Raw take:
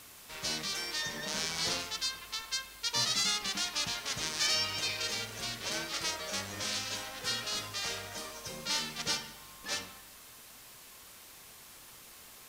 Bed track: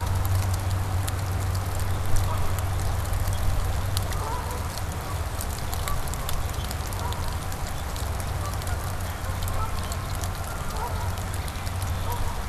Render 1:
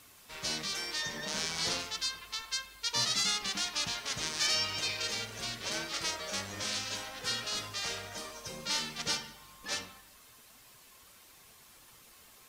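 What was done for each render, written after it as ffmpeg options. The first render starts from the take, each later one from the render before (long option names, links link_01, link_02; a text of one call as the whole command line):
ffmpeg -i in.wav -af "afftdn=noise_reduction=6:noise_floor=-53" out.wav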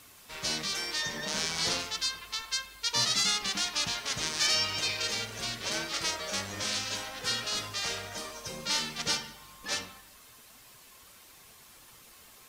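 ffmpeg -i in.wav -af "volume=3dB" out.wav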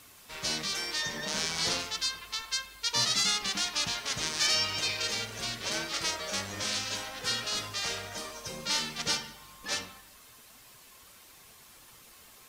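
ffmpeg -i in.wav -af anull out.wav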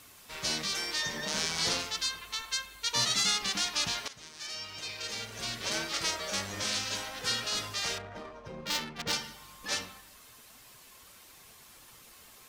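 ffmpeg -i in.wav -filter_complex "[0:a]asettb=1/sr,asplit=3[link_01][link_02][link_03];[link_01]atrim=end=2.034[link_04];[link_02]atrim=start=2.03:end=3.26,asetpts=PTS-STARTPTS,afade=type=in:duration=0.004:curve=qsin,afade=type=out:start_time=1.226:duration=0.004:curve=qsin,bandreject=frequency=5000:width=8.7[link_05];[link_03]atrim=start=3.256[link_06];[link_04][link_05]acrossfade=duration=0.004:curve1=hsin:curve2=qsin[link_07];[link_07][link_06]acrossfade=duration=0.004:curve1=qsin:curve2=hsin,asettb=1/sr,asplit=3[link_08][link_09][link_10];[link_08]atrim=end=7.984[link_11];[link_09]atrim=start=7.98:end=9.13,asetpts=PTS-STARTPTS,afade=type=in:duration=0.004:curve=qsin,afade=type=out:start_time=1.146:duration=0.004:curve=qsin,adynamicsmooth=sensitivity=3:basefreq=1200[link_12];[link_10]atrim=start=9.126[link_13];[link_11][link_12]acrossfade=duration=0.004:curve1=hsin:curve2=qsin[link_14];[link_14][link_13]acrossfade=duration=0.004:curve1=qsin:curve2=hsin,asplit=2[link_15][link_16];[link_15]atrim=end=4.08,asetpts=PTS-STARTPTS,afade=type=out:start_time=4.076:duration=0.004:curve=hsin:silence=0.141254[link_17];[link_16]atrim=start=4.08,asetpts=PTS-STARTPTS,afade=type=in:duration=1.52:curve=qua:silence=0.141254[link_18];[link_17][link_18]concat=n=2:v=0:a=1" out.wav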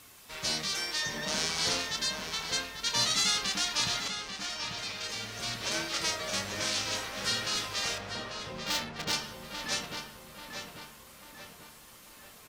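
ffmpeg -i in.wav -filter_complex "[0:a]asplit=2[link_01][link_02];[link_02]adelay=27,volume=-11dB[link_03];[link_01][link_03]amix=inputs=2:normalize=0,asplit=2[link_04][link_05];[link_05]adelay=842,lowpass=frequency=3300:poles=1,volume=-5.5dB,asplit=2[link_06][link_07];[link_07]adelay=842,lowpass=frequency=3300:poles=1,volume=0.5,asplit=2[link_08][link_09];[link_09]adelay=842,lowpass=frequency=3300:poles=1,volume=0.5,asplit=2[link_10][link_11];[link_11]adelay=842,lowpass=frequency=3300:poles=1,volume=0.5,asplit=2[link_12][link_13];[link_13]adelay=842,lowpass=frequency=3300:poles=1,volume=0.5,asplit=2[link_14][link_15];[link_15]adelay=842,lowpass=frequency=3300:poles=1,volume=0.5[link_16];[link_04][link_06][link_08][link_10][link_12][link_14][link_16]amix=inputs=7:normalize=0" out.wav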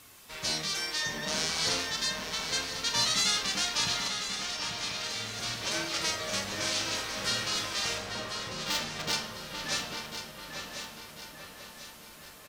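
ffmpeg -i in.wav -filter_complex "[0:a]asplit=2[link_01][link_02];[link_02]adelay=45,volume=-11.5dB[link_03];[link_01][link_03]amix=inputs=2:normalize=0,aecho=1:1:1045|2090|3135|4180|5225:0.335|0.151|0.0678|0.0305|0.0137" out.wav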